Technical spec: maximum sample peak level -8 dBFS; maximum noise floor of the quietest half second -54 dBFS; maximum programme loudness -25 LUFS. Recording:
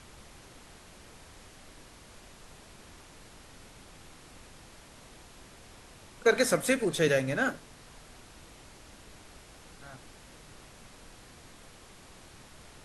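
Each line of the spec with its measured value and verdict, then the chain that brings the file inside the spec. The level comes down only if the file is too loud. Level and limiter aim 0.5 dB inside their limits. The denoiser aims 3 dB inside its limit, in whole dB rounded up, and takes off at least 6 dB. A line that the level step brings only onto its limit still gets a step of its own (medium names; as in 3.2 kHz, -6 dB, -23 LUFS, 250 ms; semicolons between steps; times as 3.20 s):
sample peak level -11.0 dBFS: pass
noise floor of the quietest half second -52 dBFS: fail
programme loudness -27.5 LUFS: pass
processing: noise reduction 6 dB, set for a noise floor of -52 dBFS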